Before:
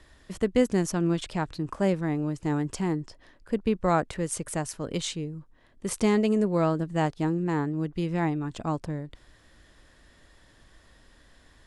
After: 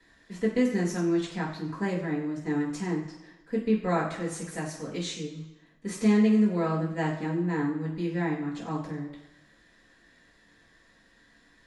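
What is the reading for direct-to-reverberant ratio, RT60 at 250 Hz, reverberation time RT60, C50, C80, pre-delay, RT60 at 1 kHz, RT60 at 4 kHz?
-12.0 dB, 0.90 s, 1.0 s, 6.0 dB, 9.0 dB, 3 ms, 1.0 s, 0.95 s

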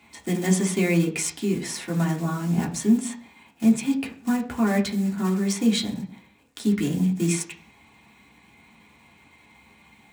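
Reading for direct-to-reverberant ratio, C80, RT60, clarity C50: -1.5 dB, 17.5 dB, 0.45 s, 13.0 dB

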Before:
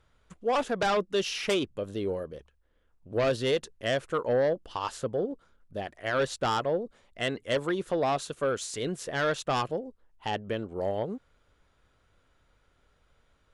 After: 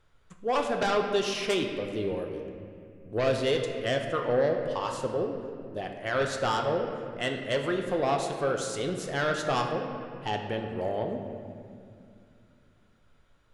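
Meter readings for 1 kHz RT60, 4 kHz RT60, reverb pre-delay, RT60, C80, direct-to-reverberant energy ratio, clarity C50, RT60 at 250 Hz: 2.2 s, 1.6 s, 3 ms, 2.3 s, 6.0 dB, 2.5 dB, 5.0 dB, 3.4 s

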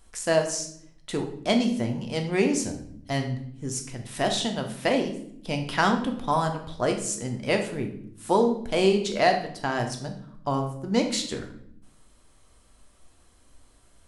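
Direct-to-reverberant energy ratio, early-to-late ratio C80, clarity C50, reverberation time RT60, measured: 3.5 dB, 11.5 dB, 8.5 dB, 0.65 s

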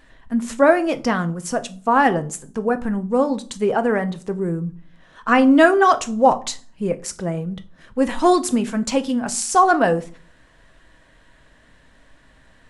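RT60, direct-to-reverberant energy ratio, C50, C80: 0.45 s, 9.5 dB, 19.0 dB, 24.0 dB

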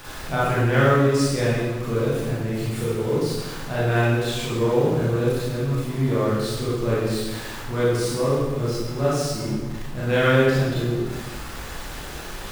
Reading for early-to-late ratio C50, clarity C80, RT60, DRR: -3.0 dB, 0.5 dB, 1.2 s, -9.0 dB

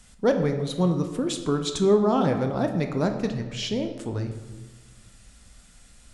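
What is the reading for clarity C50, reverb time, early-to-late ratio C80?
8.0 dB, 1.3 s, 10.0 dB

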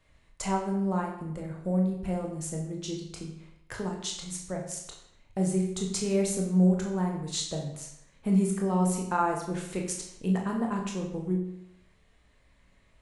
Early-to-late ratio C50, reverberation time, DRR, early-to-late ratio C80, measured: 5.5 dB, 0.75 s, 0.0 dB, 8.0 dB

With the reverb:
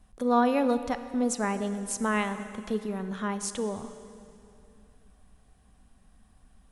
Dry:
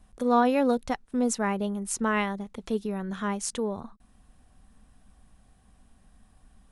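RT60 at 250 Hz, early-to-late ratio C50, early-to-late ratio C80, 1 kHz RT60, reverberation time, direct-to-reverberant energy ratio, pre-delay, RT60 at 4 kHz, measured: 2.8 s, 11.0 dB, 12.0 dB, 2.7 s, 2.7 s, 10.5 dB, 29 ms, 2.4 s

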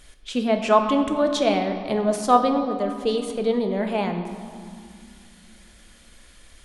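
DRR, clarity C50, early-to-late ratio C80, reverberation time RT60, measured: 5.0 dB, 7.0 dB, 8.0 dB, 2.3 s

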